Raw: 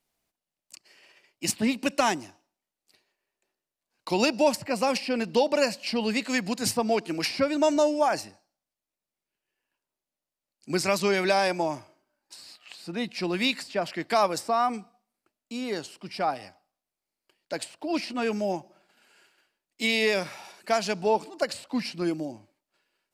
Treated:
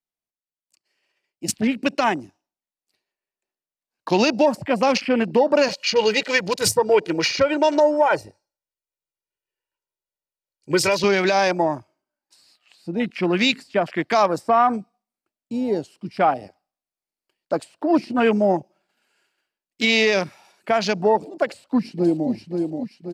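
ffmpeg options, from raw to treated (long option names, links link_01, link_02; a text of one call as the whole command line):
ffmpeg -i in.wav -filter_complex "[0:a]asettb=1/sr,asplit=3[link_01][link_02][link_03];[link_01]atrim=end=5.684[link_04];[link_02]atrim=start=5.68:end=11.04,asetpts=PTS-STARTPTS,afade=type=in:duration=0.004:curve=qsin,afade=type=out:start_time=5.356:duration=0.004:curve=qsin,aecho=1:1:2.1:0.85,atrim=end_sample=236376[link_05];[link_03]atrim=start=11.036[link_06];[link_04][link_05]acrossfade=duration=0.004:curve1=hsin:curve2=qsin[link_07];[link_07][link_06]acrossfade=duration=0.004:curve1=qsin:curve2=hsin,asplit=2[link_08][link_09];[link_09]afade=type=in:start_time=21.45:duration=0.01,afade=type=out:start_time=22.3:duration=0.01,aecho=0:1:530|1060|1590|2120|2650|3180:0.530884|0.265442|0.132721|0.0663606|0.0331803|0.0165901[link_10];[link_08][link_10]amix=inputs=2:normalize=0,afwtdn=0.0158,dynaudnorm=framelen=250:gausssize=13:maxgain=11dB,alimiter=limit=-7.5dB:level=0:latency=1:release=95" out.wav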